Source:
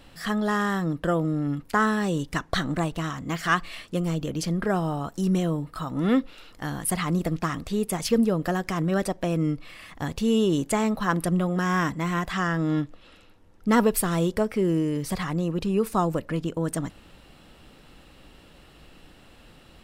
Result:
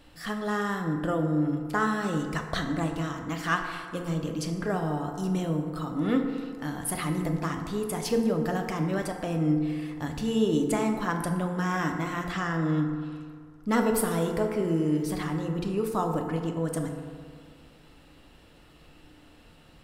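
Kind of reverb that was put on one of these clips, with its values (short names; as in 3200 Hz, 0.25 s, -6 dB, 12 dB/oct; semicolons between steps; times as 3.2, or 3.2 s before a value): FDN reverb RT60 2 s, low-frequency decay 0.9×, high-frequency decay 0.4×, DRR 3 dB; gain -5 dB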